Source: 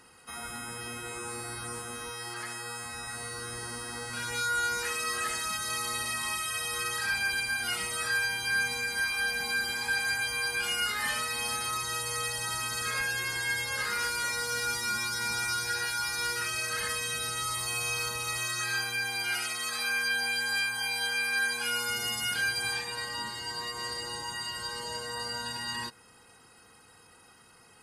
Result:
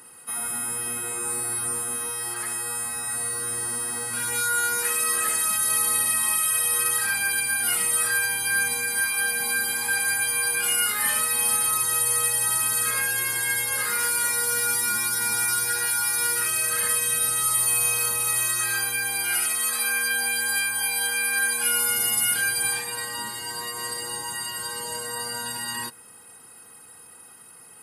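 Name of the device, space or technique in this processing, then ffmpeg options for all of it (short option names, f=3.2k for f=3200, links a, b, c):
budget condenser microphone: -af "highpass=110,highshelf=f=7.8k:t=q:w=1.5:g=11.5,volume=3.5dB"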